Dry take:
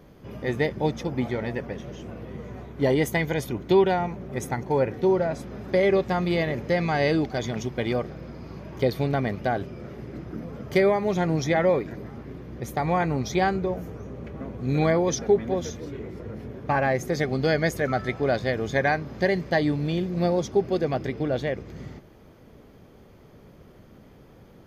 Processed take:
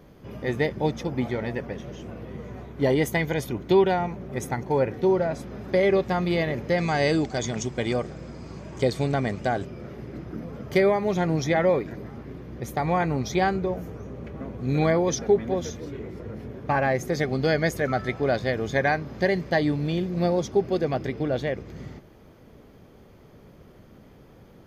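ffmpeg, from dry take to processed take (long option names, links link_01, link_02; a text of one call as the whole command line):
ffmpeg -i in.wav -filter_complex "[0:a]asettb=1/sr,asplit=3[link_01][link_02][link_03];[link_01]atrim=end=6.784[link_04];[link_02]atrim=start=6.78:end=9.65,asetpts=PTS-STARTPTS,afade=type=in:duration=0.004:curve=qsin,afade=type=out:start_time=2.866:duration=0.004:curve=qsin,lowpass=frequency=7800:width_type=q:width=7.9[link_05];[link_03]atrim=start=9.646[link_06];[link_04][link_05]acrossfade=duration=0.004:curve1=hsin:curve2=qsin[link_07];[link_07][link_06]acrossfade=duration=0.004:curve1=qsin:curve2=hsin" out.wav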